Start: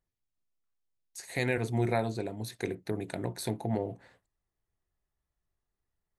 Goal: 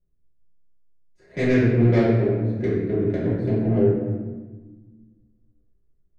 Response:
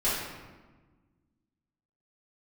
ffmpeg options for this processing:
-filter_complex "[0:a]adynamicsmooth=sensitivity=1:basefreq=730,equalizer=f=840:w=2.2:g=-14.5[s0];[1:a]atrim=start_sample=2205[s1];[s0][s1]afir=irnorm=-1:irlink=0,volume=1.33"

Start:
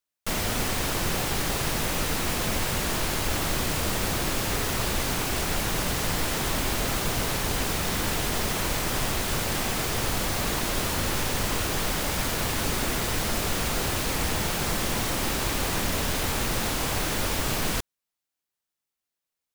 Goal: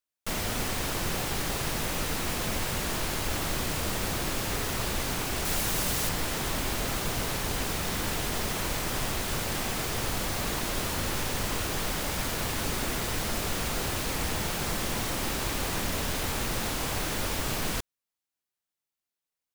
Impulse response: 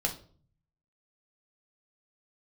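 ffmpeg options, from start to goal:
-filter_complex "[0:a]asettb=1/sr,asplit=3[s0][s1][s2];[s0]atrim=end=5.454[s3];[s1]atrim=start=5.45:end=6.09,asetpts=PTS-STARTPTS,afade=t=in:d=0.004:c=qsin,afade=t=out:st=0.636:d=0.004:c=qsin,highshelf=f=4900:g=6.5[s4];[s2]atrim=start=6.086[s5];[s3][s4]acrossfade=d=0.004:c1=hsin:c2=qsin[s6];[s6][s5]acrossfade=d=0.004:c1=qsin:c2=hsin,volume=0.668"

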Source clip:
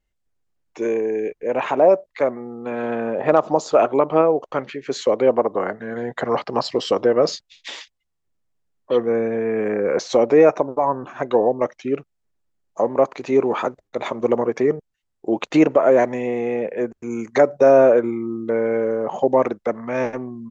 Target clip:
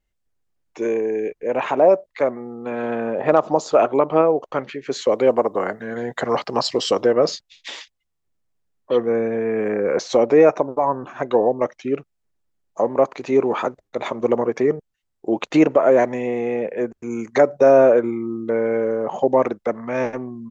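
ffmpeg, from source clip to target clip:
-filter_complex "[0:a]asettb=1/sr,asplit=3[s0][s1][s2];[s0]atrim=end=5.114[s3];[s1]atrim=start=5.11:end=7.12,asetpts=PTS-STARTPTS,afade=t=in:d=0.004:c=qsin,afade=t=out:st=2.006:d=0.004:c=qsin,highshelf=f=5200:g=12[s4];[s2]atrim=start=7.116[s5];[s3][s4]acrossfade=d=0.004:c1=hsin:c2=qsin[s6];[s6][s5]acrossfade=d=0.004:c1=qsin:c2=hsin"

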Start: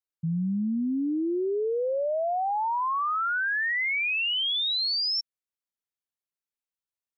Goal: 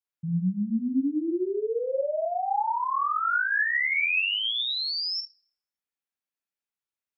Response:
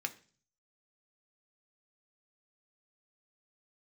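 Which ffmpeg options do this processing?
-filter_complex "[0:a]asplit=2[s0][s1];[1:a]atrim=start_sample=2205,lowpass=3000,adelay=49[s2];[s1][s2]afir=irnorm=-1:irlink=0,volume=1.26[s3];[s0][s3]amix=inputs=2:normalize=0,volume=0.668"

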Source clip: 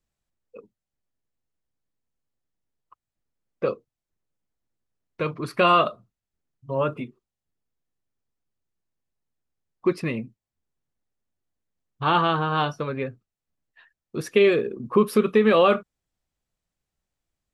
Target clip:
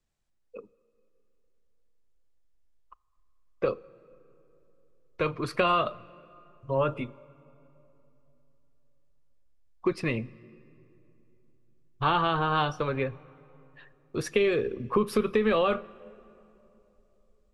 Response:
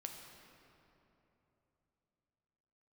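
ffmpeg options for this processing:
-filter_complex "[0:a]acrossover=split=200[s0][s1];[s1]acompressor=threshold=0.0794:ratio=6[s2];[s0][s2]amix=inputs=2:normalize=0,lowpass=9500,asubboost=boost=11.5:cutoff=51,asplit=2[s3][s4];[1:a]atrim=start_sample=2205[s5];[s4][s5]afir=irnorm=-1:irlink=0,volume=0.224[s6];[s3][s6]amix=inputs=2:normalize=0"

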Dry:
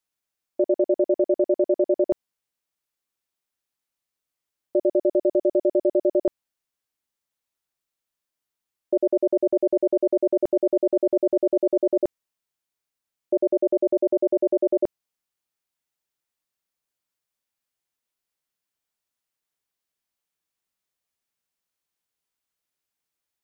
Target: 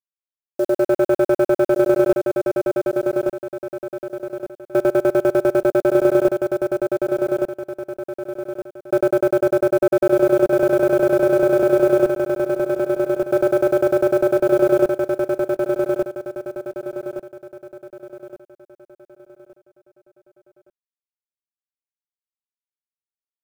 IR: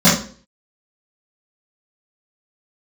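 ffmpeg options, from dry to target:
-af "aecho=1:1:5.3:0.55,alimiter=limit=0.106:level=0:latency=1:release=44,dynaudnorm=f=450:g=3:m=3.76,asoftclip=type=tanh:threshold=0.2,acrusher=bits=6:mix=0:aa=0.000001,aecho=1:1:1168|2336|3504|4672|5840:0.631|0.233|0.0864|0.032|0.0118,volume=1.5"

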